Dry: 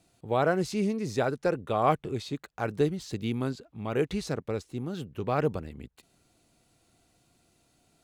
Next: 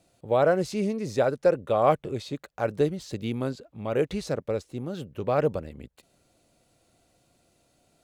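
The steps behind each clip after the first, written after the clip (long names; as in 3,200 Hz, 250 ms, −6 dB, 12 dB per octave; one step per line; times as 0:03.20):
parametric band 560 Hz +9 dB 0.4 octaves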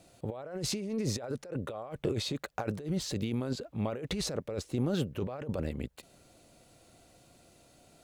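compressor whose output falls as the input rises −34 dBFS, ratio −1
level −1 dB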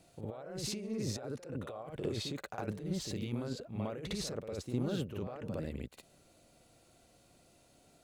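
backwards echo 58 ms −5 dB
level −5.5 dB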